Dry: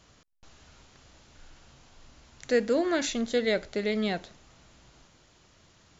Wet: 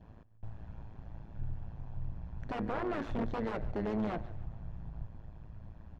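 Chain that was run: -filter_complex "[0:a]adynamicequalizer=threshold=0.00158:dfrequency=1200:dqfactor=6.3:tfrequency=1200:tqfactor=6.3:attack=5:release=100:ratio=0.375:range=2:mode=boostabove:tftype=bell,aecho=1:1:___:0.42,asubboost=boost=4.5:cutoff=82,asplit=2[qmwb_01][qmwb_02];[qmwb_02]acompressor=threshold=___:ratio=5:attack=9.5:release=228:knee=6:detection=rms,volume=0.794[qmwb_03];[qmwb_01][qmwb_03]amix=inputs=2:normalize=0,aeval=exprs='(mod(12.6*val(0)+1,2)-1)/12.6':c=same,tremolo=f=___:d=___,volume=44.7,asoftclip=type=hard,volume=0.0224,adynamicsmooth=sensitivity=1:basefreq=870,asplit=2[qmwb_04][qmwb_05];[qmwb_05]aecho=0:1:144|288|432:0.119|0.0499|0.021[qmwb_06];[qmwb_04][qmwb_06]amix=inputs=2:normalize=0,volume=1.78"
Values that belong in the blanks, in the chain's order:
1.2, 0.01, 110, 0.857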